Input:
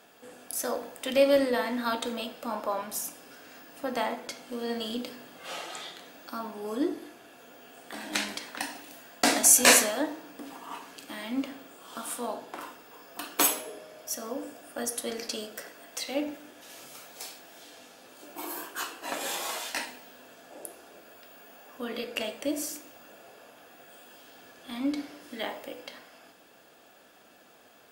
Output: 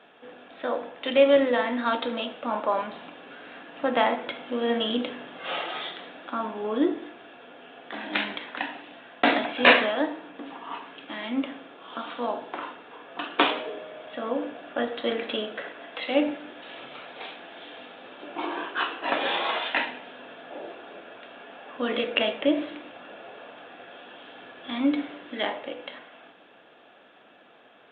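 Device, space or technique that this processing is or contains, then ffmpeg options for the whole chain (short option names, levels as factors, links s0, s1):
Bluetooth headset: -af "highpass=f=180:p=1,dynaudnorm=f=300:g=21:m=1.78,aresample=8000,aresample=44100,volume=1.58" -ar 16000 -c:a sbc -b:a 64k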